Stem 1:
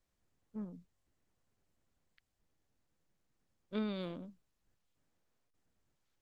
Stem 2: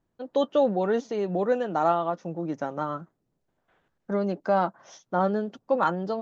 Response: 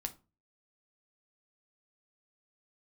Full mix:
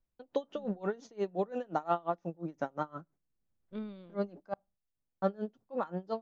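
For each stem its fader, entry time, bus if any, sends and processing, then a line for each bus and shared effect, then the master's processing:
−7.0 dB, 0.00 s, no send, spectral tilt −2 dB per octave; automatic ducking −10 dB, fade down 0.30 s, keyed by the second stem
−3.0 dB, 0.00 s, muted 0:04.54–0:05.22, send −24 dB, noise gate with hold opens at −51 dBFS; tremolo with a sine in dB 5.7 Hz, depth 27 dB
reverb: on, RT60 0.30 s, pre-delay 7 ms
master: no processing

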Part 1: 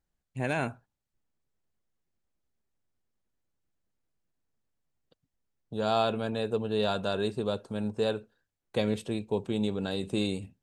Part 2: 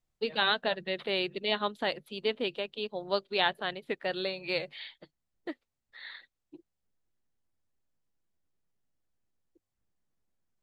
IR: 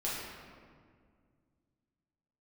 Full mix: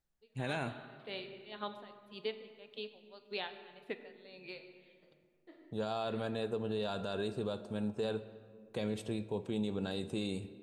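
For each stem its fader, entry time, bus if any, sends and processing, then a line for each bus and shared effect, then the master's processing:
−5.0 dB, 0.00 s, send −18 dB, no processing
−7.5 dB, 0.00 s, send −12.5 dB, tremolo with a sine in dB 1.8 Hz, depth 26 dB; automatic ducking −19 dB, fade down 0.85 s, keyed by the first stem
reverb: on, RT60 2.0 s, pre-delay 6 ms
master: brickwall limiter −26 dBFS, peak gain reduction 8 dB

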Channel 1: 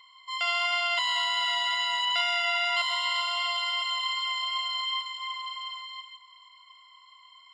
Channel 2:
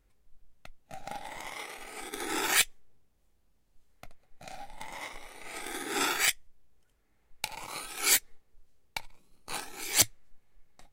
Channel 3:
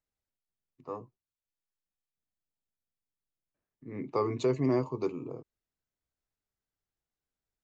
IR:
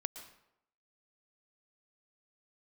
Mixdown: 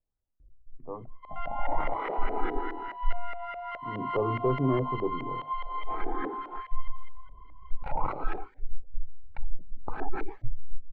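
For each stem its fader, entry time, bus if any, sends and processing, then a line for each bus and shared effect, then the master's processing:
0:03.73 −10.5 dB → 0:04.17 −4 dB, 0.95 s, no send, parametric band 4,000 Hz −5 dB 0.2 octaves
+2.5 dB, 0.40 s, no send, gate on every frequency bin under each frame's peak −20 dB strong; compressor whose output falls as the input rises −43 dBFS, ratio −1; automatic ducking −20 dB, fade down 0.70 s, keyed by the third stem
−6.5 dB, 0.00 s, send −23 dB, no processing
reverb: on, RT60 0.80 s, pre-delay 108 ms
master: spectral tilt −3.5 dB per octave; mains-hum notches 50/100/150/200/250 Hz; auto-filter low-pass saw up 4.8 Hz 580–1,800 Hz

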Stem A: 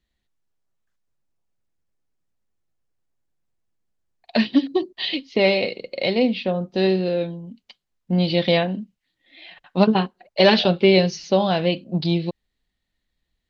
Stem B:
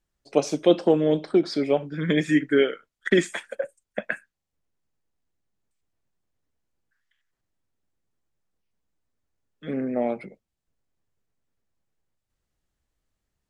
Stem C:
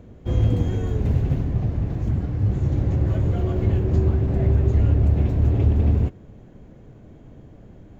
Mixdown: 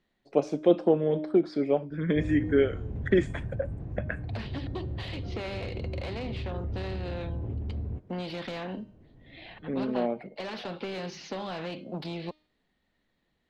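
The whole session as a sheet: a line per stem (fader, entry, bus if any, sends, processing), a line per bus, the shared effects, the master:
−5.5 dB, 0.00 s, bus A, no send, Bessel high-pass filter 210 Hz, order 2; every bin compressed towards the loudest bin 2 to 1; automatic ducking −6 dB, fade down 0.85 s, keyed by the second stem
−2.5 dB, 0.00 s, no bus, no send, no processing
−11.0 dB, 1.90 s, bus A, no send, no processing
bus A: 0.0 dB, soft clipping −22 dBFS, distortion −13 dB; downward compressor, threshold −30 dBFS, peak gain reduction 5.5 dB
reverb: not used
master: low-pass filter 1,200 Hz 6 dB per octave; hum removal 306.9 Hz, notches 35

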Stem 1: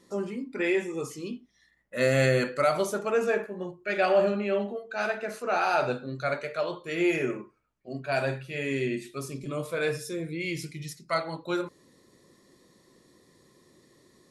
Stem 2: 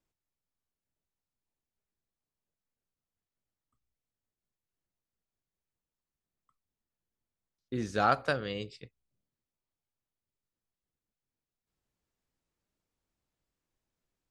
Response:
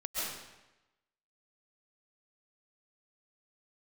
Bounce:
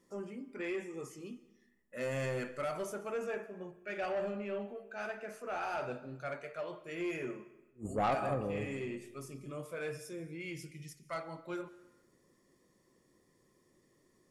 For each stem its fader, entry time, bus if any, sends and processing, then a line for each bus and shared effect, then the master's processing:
−10.5 dB, 0.00 s, send −21.5 dB, soft clipping −18.5 dBFS, distortion −17 dB
0.0 dB, 0.00 s, send −13 dB, brick-wall band-stop 1,300–6,800 Hz; level that may rise only so fast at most 330 dB per second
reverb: on, RT60 1.0 s, pre-delay 95 ms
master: parametric band 4,000 Hz −13.5 dB 0.23 octaves; soft clipping −25.5 dBFS, distortion −13 dB

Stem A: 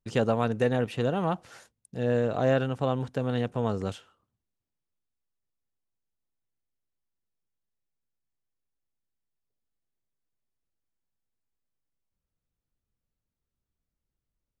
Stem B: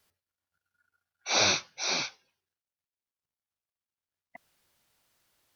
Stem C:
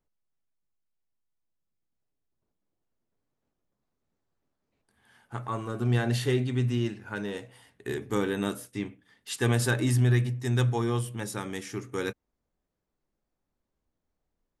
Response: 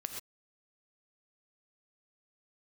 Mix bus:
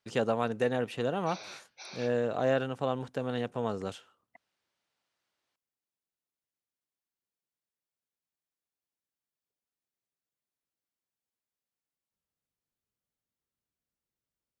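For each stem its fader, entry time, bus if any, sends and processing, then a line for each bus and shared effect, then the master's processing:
−2.0 dB, 0.00 s, no bus, no send, no processing
−8.0 dB, 0.00 s, bus A, no send, downward compressor, threshold −29 dBFS, peak gain reduction 9 dB
muted
bus A: 0.0 dB, Bessel low-pass filter 4,800 Hz; brickwall limiter −36 dBFS, peak gain reduction 6.5 dB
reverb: not used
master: high-pass filter 250 Hz 6 dB per octave

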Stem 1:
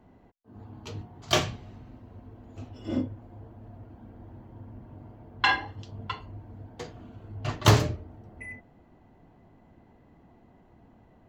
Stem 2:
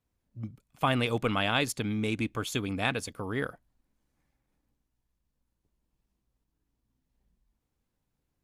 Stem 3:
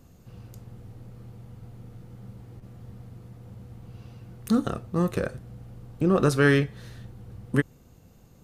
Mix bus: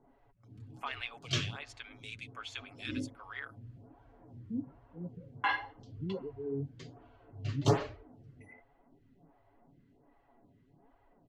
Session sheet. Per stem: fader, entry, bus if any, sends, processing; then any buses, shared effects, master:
−2.0 dB, 0.00 s, no send, flanger 1 Hz, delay 2 ms, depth 8.6 ms, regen +38%
−2.5 dB, 0.00 s, no send, automatic gain control gain up to 4 dB; high-pass filter 1,400 Hz 12 dB per octave; downward compressor 1.5 to 1, threshold −47 dBFS, peak gain reduction 9.5 dB
−13.0 dB, 0.00 s, no send, spectral peaks only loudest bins 4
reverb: not used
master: low-pass filter 5,700 Hz 12 dB per octave; comb filter 7.2 ms, depth 52%; phaser with staggered stages 1.3 Hz

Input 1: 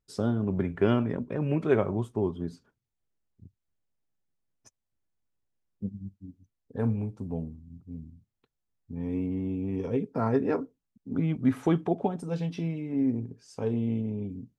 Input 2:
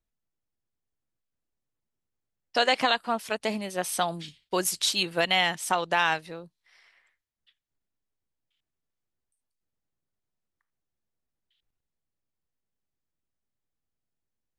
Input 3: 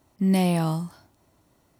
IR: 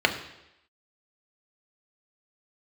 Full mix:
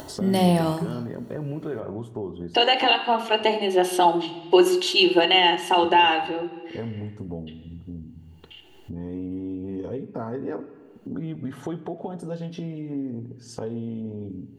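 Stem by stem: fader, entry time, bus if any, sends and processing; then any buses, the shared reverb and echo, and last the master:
−6.0 dB, 0.00 s, send −20 dB, brickwall limiter −20 dBFS, peak gain reduction 9 dB
0.0 dB, 0.00 s, send −13 dB, brickwall limiter −16 dBFS, peak gain reduction 6.5 dB; hollow resonant body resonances 360/820/2,800 Hz, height 17 dB; automatic ducking −9 dB, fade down 0.70 s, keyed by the first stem
−0.5 dB, 0.00 s, send −14.5 dB, no processing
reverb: on, RT60 0.85 s, pre-delay 3 ms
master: upward compression, threshold −25 dBFS

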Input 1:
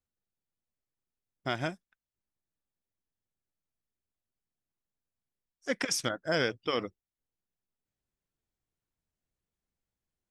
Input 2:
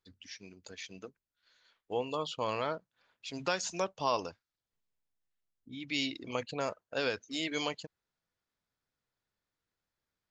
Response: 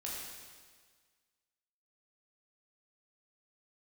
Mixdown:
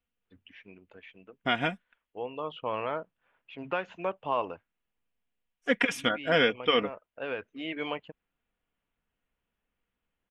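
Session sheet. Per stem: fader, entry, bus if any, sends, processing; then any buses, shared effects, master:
+3.0 dB, 0.00 s, no send, comb filter 4.2 ms, depth 55%
+3.0 dB, 0.25 s, no send, Bessel low-pass filter 1,400 Hz, order 2; low-shelf EQ 230 Hz −6.5 dB; automatic ducking −8 dB, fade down 0.70 s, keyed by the first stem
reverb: not used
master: high shelf with overshoot 3,800 Hz −9.5 dB, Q 3

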